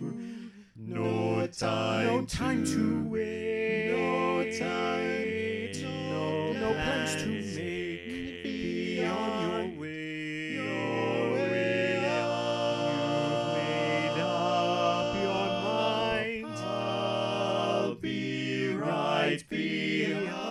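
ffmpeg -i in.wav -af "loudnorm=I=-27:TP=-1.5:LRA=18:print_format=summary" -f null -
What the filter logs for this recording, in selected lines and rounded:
Input Integrated:    -30.1 LUFS
Input True Peak:     -15.4 dBTP
Input LRA:             3.4 LU
Input Threshold:     -40.1 LUFS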